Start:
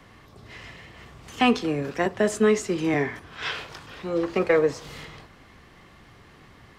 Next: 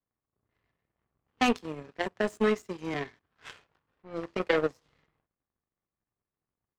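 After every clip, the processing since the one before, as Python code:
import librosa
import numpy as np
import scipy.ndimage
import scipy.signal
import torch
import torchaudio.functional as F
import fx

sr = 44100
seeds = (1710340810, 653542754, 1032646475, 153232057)

y = fx.env_lowpass(x, sr, base_hz=1100.0, full_db=-20.5)
y = fx.power_curve(y, sr, exponent=2.0)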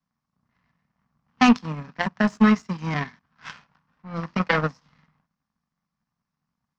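y = fx.curve_eq(x, sr, hz=(110.0, 160.0, 240.0, 360.0, 1000.0, 1500.0, 3500.0, 5500.0, 9700.0), db=(0, 12, 9, -11, 7, 5, 0, 6, -17))
y = y * librosa.db_to_amplitude(4.0)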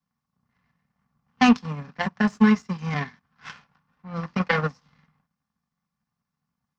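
y = fx.notch_comb(x, sr, f0_hz=320.0)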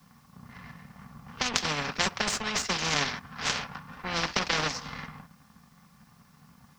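y = fx.over_compress(x, sr, threshold_db=-25.0, ratio=-1.0)
y = fx.spectral_comp(y, sr, ratio=4.0)
y = y * librosa.db_to_amplitude(5.5)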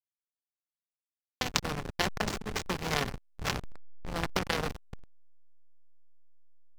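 y = fx.backlash(x, sr, play_db=-19.0)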